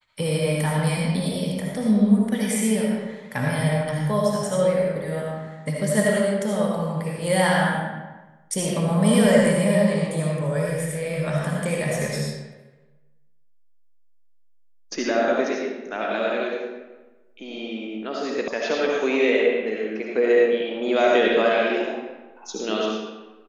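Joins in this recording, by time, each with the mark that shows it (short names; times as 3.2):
18.48 sound cut off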